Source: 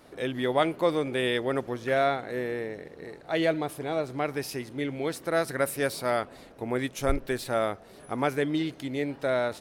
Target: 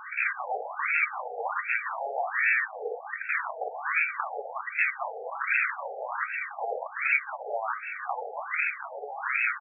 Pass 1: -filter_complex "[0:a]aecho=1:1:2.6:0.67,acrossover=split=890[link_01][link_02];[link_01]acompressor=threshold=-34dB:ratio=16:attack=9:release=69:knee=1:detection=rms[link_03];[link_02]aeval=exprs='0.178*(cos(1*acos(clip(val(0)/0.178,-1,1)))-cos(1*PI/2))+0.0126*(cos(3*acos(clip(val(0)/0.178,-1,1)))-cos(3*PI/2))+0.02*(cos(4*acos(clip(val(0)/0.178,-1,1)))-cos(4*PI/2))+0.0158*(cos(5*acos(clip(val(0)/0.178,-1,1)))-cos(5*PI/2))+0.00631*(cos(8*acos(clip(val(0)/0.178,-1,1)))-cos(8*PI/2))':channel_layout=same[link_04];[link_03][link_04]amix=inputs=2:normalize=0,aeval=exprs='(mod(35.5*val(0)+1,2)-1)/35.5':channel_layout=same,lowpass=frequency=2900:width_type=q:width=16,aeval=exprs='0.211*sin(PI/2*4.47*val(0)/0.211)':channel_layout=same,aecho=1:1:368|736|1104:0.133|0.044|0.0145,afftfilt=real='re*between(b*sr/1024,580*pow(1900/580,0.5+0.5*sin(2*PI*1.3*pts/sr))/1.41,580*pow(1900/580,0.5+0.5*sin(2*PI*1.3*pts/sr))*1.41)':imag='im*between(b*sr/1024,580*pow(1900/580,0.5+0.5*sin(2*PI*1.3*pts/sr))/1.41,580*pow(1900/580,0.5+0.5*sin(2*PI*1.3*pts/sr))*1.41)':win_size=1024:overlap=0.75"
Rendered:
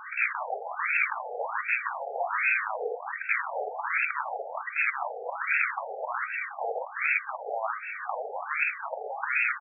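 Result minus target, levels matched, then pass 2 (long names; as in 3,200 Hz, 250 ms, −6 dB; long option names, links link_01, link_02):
downward compressor: peak gain reduction −6.5 dB
-filter_complex "[0:a]aecho=1:1:2.6:0.67,acrossover=split=890[link_01][link_02];[link_01]acompressor=threshold=-41dB:ratio=16:attack=9:release=69:knee=1:detection=rms[link_03];[link_02]aeval=exprs='0.178*(cos(1*acos(clip(val(0)/0.178,-1,1)))-cos(1*PI/2))+0.0126*(cos(3*acos(clip(val(0)/0.178,-1,1)))-cos(3*PI/2))+0.02*(cos(4*acos(clip(val(0)/0.178,-1,1)))-cos(4*PI/2))+0.0158*(cos(5*acos(clip(val(0)/0.178,-1,1)))-cos(5*PI/2))+0.00631*(cos(8*acos(clip(val(0)/0.178,-1,1)))-cos(8*PI/2))':channel_layout=same[link_04];[link_03][link_04]amix=inputs=2:normalize=0,aeval=exprs='(mod(35.5*val(0)+1,2)-1)/35.5':channel_layout=same,lowpass=frequency=2900:width_type=q:width=16,aeval=exprs='0.211*sin(PI/2*4.47*val(0)/0.211)':channel_layout=same,aecho=1:1:368|736|1104:0.133|0.044|0.0145,afftfilt=real='re*between(b*sr/1024,580*pow(1900/580,0.5+0.5*sin(2*PI*1.3*pts/sr))/1.41,580*pow(1900/580,0.5+0.5*sin(2*PI*1.3*pts/sr))*1.41)':imag='im*between(b*sr/1024,580*pow(1900/580,0.5+0.5*sin(2*PI*1.3*pts/sr))/1.41,580*pow(1900/580,0.5+0.5*sin(2*PI*1.3*pts/sr))*1.41)':win_size=1024:overlap=0.75"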